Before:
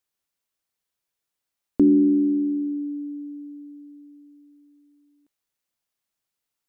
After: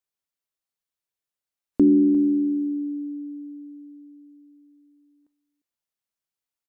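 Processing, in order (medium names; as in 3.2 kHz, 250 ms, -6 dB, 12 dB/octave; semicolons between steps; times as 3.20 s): spectral noise reduction 7 dB; short-mantissa float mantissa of 8-bit; delay 351 ms -16.5 dB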